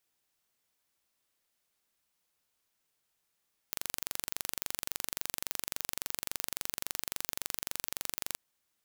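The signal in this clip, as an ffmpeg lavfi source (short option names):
-f lavfi -i "aevalsrc='0.473*eq(mod(n,1869),0)':d=4.65:s=44100"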